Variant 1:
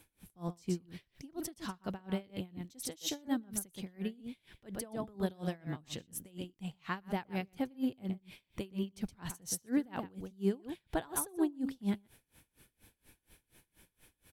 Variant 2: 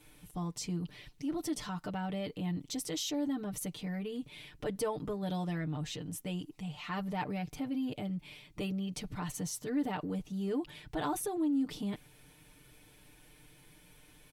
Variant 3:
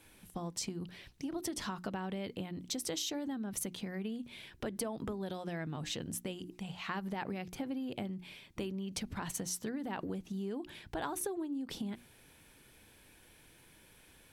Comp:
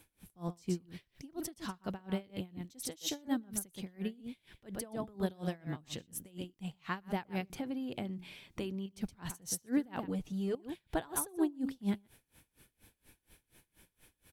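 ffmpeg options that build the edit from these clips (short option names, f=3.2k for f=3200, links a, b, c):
-filter_complex "[0:a]asplit=3[a][b][c];[a]atrim=end=7.502[d];[2:a]atrim=start=7.498:end=8.862[e];[b]atrim=start=8.858:end=10.082[f];[1:a]atrim=start=10.078:end=10.552[g];[c]atrim=start=10.548[h];[d][e]acrossfade=d=0.004:c1=hsin:c2=hsin[i];[i][f]acrossfade=d=0.004:c1=hsin:c2=hsin[j];[j][g]acrossfade=d=0.004:c1=hsin:c2=hsin[k];[k][h]acrossfade=d=0.004:c1=hsin:c2=hsin"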